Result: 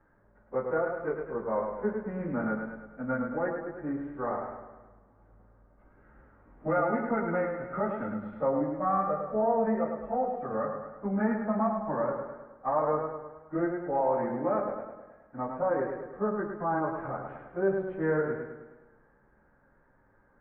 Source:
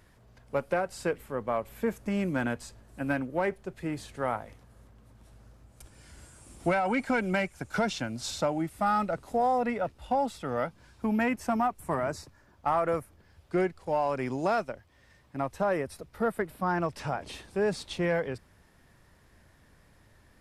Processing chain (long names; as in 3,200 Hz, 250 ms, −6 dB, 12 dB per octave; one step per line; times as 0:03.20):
phase-vocoder pitch shift without resampling −1.5 semitones
Butterworth low-pass 1,700 Hz 36 dB per octave
parametric band 81 Hz −13.5 dB 1.3 octaves
convolution reverb, pre-delay 3 ms, DRR 4.5 dB
feedback echo with a swinging delay time 105 ms, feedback 53%, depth 52 cents, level −5.5 dB